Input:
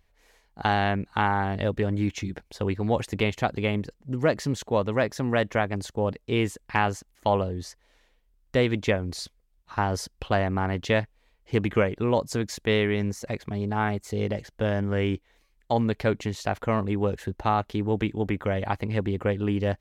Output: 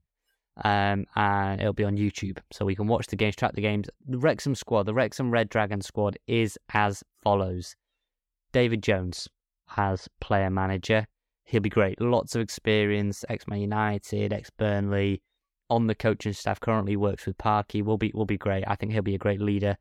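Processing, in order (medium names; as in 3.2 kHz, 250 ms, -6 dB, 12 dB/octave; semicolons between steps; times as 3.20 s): 9.12–10.66 s: low-pass that closes with the level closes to 2.6 kHz, closed at -23.5 dBFS; spectral noise reduction 23 dB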